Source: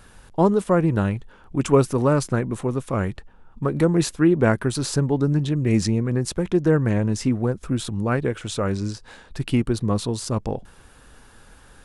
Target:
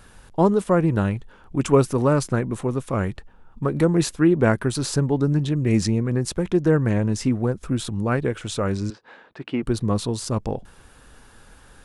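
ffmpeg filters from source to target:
-filter_complex "[0:a]asettb=1/sr,asplit=3[a][b][c];[a]atrim=end=8.904[d];[b]atrim=start=8.9:end=9.63,asetpts=PTS-STARTPTS,afade=t=in:d=0.004:c=qsin,afade=t=out:st=0.726:d=0.004:c=qsin,highpass=280,lowpass=2.4k[e];[c]atrim=start=9.626[f];[d][e]acrossfade=d=0.004:c1=hsin:c2=qsin[g];[g][f]acrossfade=d=0.004:c1=qsin:c2=hsin"

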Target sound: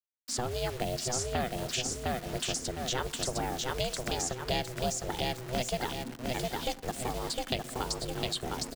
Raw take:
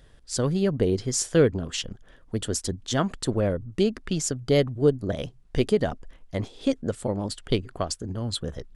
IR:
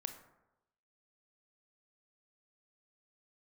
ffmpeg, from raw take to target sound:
-filter_complex "[0:a]lowpass=6.8k,aemphasis=mode=production:type=50kf,aecho=1:1:708|1416|2124|2832:0.596|0.185|0.0572|0.0177,acrusher=bits=6:mix=0:aa=0.000001,aeval=exprs='val(0)*sin(2*PI*250*n/s)':c=same,asplit=2[a][b];[1:a]atrim=start_sample=2205[c];[b][c]afir=irnorm=-1:irlink=0,volume=-8dB[d];[a][d]amix=inputs=2:normalize=0,acrossover=split=180|870|2600[e][f][g][h];[e]acompressor=threshold=-39dB:ratio=4[i];[f]acompressor=threshold=-38dB:ratio=4[j];[g]acompressor=threshold=-36dB:ratio=4[k];[h]acompressor=threshold=-34dB:ratio=4[l];[i][j][k][l]amix=inputs=4:normalize=0"

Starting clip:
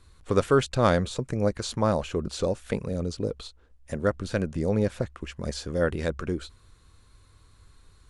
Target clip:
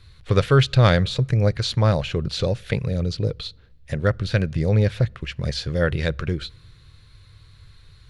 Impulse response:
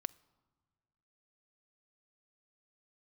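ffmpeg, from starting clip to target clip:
-filter_complex "[0:a]equalizer=f=125:t=o:w=1:g=12,equalizer=f=250:t=o:w=1:g=-8,equalizer=f=1k:t=o:w=1:g=-5,equalizer=f=2k:t=o:w=1:g=5,equalizer=f=4k:t=o:w=1:g=8,equalizer=f=8k:t=o:w=1:g=-9,asplit=2[a][b];[1:a]atrim=start_sample=2205[c];[b][c]afir=irnorm=-1:irlink=0,volume=-3dB[d];[a][d]amix=inputs=2:normalize=0"

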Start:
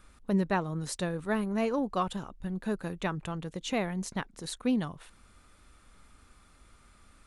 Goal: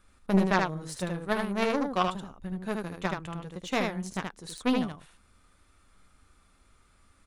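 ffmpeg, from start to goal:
-af "aeval=exprs='0.15*(cos(1*acos(clip(val(0)/0.15,-1,1)))-cos(1*PI/2))+0.0376*(cos(3*acos(clip(val(0)/0.15,-1,1)))-cos(3*PI/2))':c=same,aecho=1:1:11|77:0.335|0.668,volume=6.5dB"

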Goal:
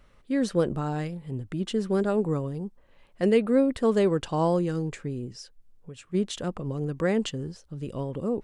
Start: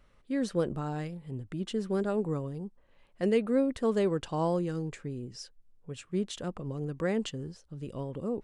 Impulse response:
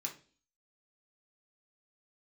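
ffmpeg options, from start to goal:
-filter_complex "[0:a]asettb=1/sr,asplit=3[a][b][c];[a]atrim=end=3.254[d];[b]atrim=start=3.25:end=3.78,asetpts=PTS-STARTPTS,afade=t=in:d=0.004:c=qsin,afade=t=out:st=0.526:d=0.004:c=qsin,bandreject=f=6.2k:w=5[e];[c]atrim=start=3.776[f];[d][e]acrossfade=d=0.004:c1=hsin:c2=qsin[g];[g][f]acrossfade=d=0.004:c1=qsin:c2=hsin,asplit=3[h][i][j];[h]afade=t=out:st=5.32:d=0.02[k];[i]acompressor=threshold=-46dB:ratio=3,afade=t=in:st=5.32:d=0.02,afade=t=out:st=6.13:d=0.02[l];[j]afade=t=in:st=6.13:d=0.02[m];[k][l][m]amix=inputs=3:normalize=0,volume=5dB"

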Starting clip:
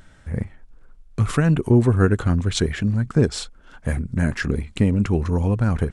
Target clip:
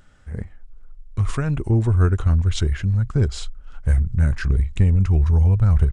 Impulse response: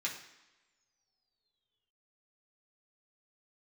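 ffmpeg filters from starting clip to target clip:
-af "asetrate=41625,aresample=44100,atempo=1.05946,asubboost=boost=10:cutoff=81,volume=-4.5dB"

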